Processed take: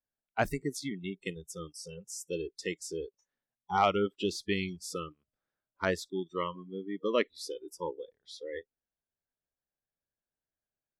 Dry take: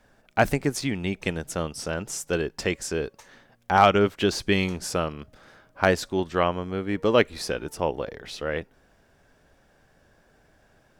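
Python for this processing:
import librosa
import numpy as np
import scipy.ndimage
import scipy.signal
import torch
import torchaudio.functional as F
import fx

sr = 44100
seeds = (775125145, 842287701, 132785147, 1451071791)

y = fx.noise_reduce_blind(x, sr, reduce_db=30)
y = F.gain(torch.from_numpy(y), -8.5).numpy()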